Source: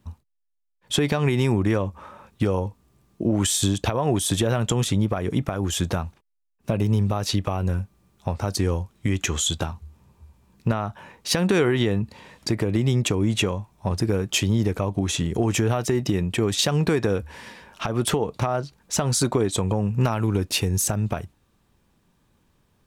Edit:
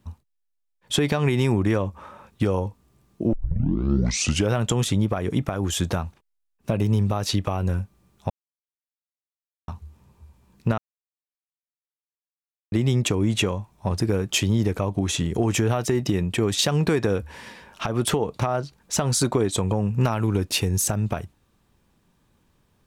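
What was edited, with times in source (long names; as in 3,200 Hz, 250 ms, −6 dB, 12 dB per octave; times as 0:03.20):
0:03.33: tape start 1.23 s
0:08.30–0:09.68: silence
0:10.78–0:12.72: silence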